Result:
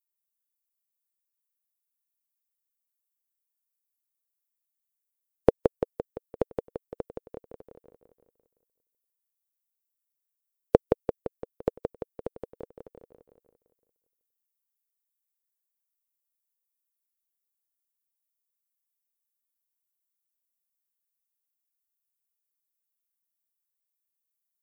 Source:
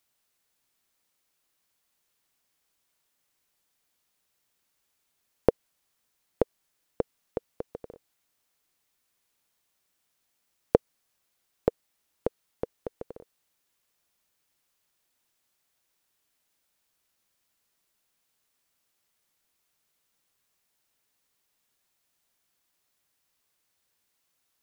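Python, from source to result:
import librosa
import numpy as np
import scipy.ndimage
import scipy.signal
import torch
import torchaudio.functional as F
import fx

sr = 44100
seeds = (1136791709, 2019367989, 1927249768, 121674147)

p1 = fx.bin_expand(x, sr, power=2.0)
p2 = p1 + fx.echo_feedback(p1, sr, ms=171, feedback_pct=54, wet_db=-4.5, dry=0)
y = F.gain(torch.from_numpy(p2), 3.0).numpy()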